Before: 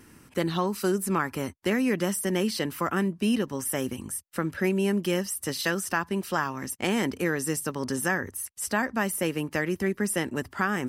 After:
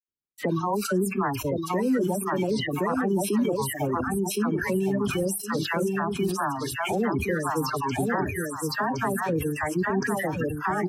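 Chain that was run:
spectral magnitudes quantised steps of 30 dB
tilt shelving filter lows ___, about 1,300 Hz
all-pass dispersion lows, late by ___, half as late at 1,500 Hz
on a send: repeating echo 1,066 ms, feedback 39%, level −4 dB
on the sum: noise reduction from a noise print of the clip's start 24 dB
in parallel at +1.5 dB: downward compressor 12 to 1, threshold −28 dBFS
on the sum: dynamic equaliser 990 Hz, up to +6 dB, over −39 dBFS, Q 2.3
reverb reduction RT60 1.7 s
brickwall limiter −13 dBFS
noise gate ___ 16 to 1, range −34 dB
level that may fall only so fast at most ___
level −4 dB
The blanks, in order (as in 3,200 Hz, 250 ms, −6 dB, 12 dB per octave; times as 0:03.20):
+6.5 dB, 84 ms, −50 dBFS, 58 dB per second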